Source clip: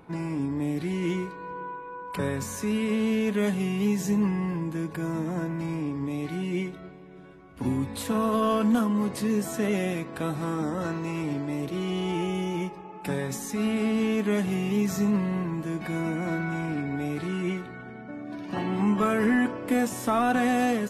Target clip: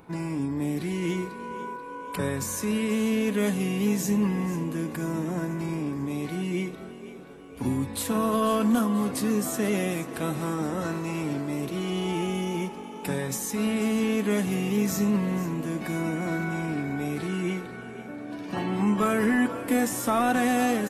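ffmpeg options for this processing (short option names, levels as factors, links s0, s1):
-filter_complex "[0:a]highshelf=f=6600:g=8.5,asplit=6[s0][s1][s2][s3][s4][s5];[s1]adelay=490,afreqshift=47,volume=0.188[s6];[s2]adelay=980,afreqshift=94,volume=0.101[s7];[s3]adelay=1470,afreqshift=141,volume=0.055[s8];[s4]adelay=1960,afreqshift=188,volume=0.0295[s9];[s5]adelay=2450,afreqshift=235,volume=0.016[s10];[s0][s6][s7][s8][s9][s10]amix=inputs=6:normalize=0"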